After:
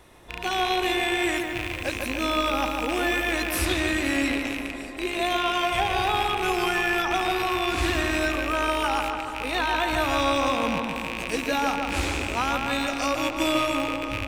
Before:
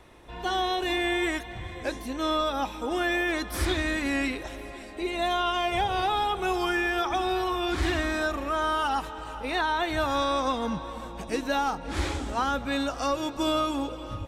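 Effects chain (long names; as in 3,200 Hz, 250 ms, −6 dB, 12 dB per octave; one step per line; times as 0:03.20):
loose part that buzzes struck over −39 dBFS, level −19 dBFS
high-shelf EQ 6,800 Hz +10 dB
0:01.34–0:03.54: background noise white −53 dBFS
pitch vibrato 2.7 Hz 6.6 cents
feedback echo with a low-pass in the loop 147 ms, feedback 66%, low-pass 2,600 Hz, level −4 dB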